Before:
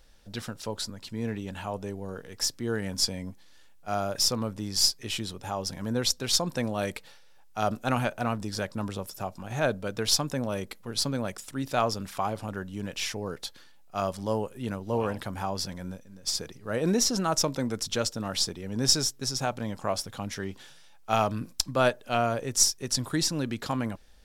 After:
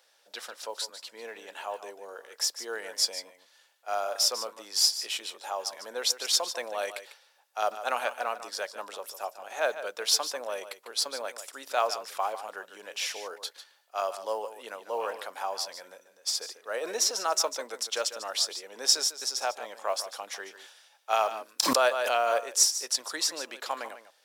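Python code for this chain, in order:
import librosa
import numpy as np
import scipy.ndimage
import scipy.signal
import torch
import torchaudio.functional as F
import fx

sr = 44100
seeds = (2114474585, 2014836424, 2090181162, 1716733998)

p1 = scipy.signal.sosfilt(scipy.signal.butter(4, 500.0, 'highpass', fs=sr, output='sos'), x)
p2 = fx.mod_noise(p1, sr, seeds[0], snr_db=34)
p3 = p2 + fx.echo_single(p2, sr, ms=148, db=-12.0, dry=0)
y = fx.pre_swell(p3, sr, db_per_s=23.0, at=(21.61, 22.37), fade=0.02)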